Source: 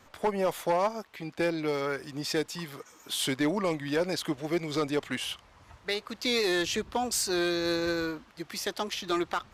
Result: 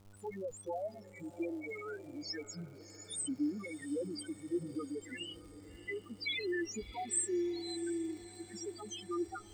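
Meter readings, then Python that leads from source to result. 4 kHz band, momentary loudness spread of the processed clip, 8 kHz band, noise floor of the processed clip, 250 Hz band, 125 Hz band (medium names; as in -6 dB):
-12.0 dB, 12 LU, -4.0 dB, -55 dBFS, -7.0 dB, -12.5 dB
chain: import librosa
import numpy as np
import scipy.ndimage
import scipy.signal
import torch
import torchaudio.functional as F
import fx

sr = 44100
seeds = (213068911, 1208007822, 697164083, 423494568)

y = fx.graphic_eq(x, sr, hz=(125, 250, 500, 1000, 4000, 8000), db=(-11, -6, -11, -11, -6, 10))
y = fx.harmonic_tremolo(y, sr, hz=1.5, depth_pct=50, crossover_hz=900.0)
y = fx.spec_topn(y, sr, count=2)
y = fx.dmg_buzz(y, sr, base_hz=100.0, harmonics=14, level_db=-68.0, tilt_db=-7, odd_only=False)
y = fx.dmg_crackle(y, sr, seeds[0], per_s=300.0, level_db=-62.0)
y = fx.echo_diffused(y, sr, ms=665, feedback_pct=61, wet_db=-15.5)
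y = F.gain(torch.from_numpy(y), 7.5).numpy()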